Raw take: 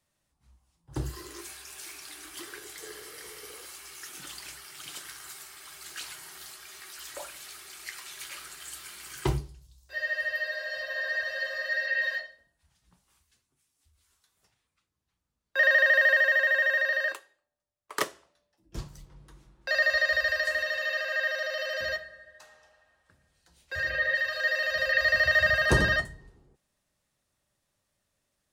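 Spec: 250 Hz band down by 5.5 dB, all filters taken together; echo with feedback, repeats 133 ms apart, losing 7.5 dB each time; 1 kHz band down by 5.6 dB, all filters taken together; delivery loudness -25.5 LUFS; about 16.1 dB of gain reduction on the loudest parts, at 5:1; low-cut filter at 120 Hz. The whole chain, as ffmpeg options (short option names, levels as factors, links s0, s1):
-af "highpass=120,equalizer=f=250:t=o:g=-8,equalizer=f=1000:t=o:g=-7,acompressor=threshold=0.0112:ratio=5,aecho=1:1:133|266|399|532|665:0.422|0.177|0.0744|0.0312|0.0131,volume=5.31"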